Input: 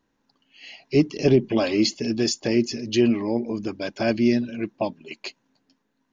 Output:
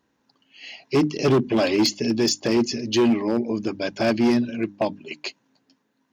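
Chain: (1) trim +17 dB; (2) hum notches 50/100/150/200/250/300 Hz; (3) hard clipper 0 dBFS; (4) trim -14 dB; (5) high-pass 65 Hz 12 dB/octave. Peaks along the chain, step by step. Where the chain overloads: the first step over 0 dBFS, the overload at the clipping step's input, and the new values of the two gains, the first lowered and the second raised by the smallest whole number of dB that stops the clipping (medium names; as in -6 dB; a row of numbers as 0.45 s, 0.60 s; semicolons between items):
+10.0 dBFS, +9.5 dBFS, 0.0 dBFS, -14.0 dBFS, -10.0 dBFS; step 1, 9.5 dB; step 1 +7 dB, step 4 -4 dB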